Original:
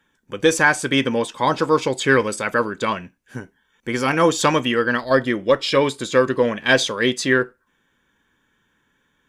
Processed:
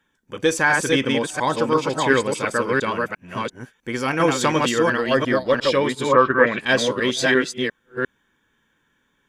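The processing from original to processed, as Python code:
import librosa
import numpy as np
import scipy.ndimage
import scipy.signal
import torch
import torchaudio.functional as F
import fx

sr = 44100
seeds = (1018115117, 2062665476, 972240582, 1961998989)

y = fx.reverse_delay(x, sr, ms=350, wet_db=-2)
y = fx.lowpass_res(y, sr, hz=fx.line((6.11, 1000.0), (6.6, 2500.0)), q=4.4, at=(6.11, 6.6), fade=0.02)
y = y * 10.0 ** (-3.0 / 20.0)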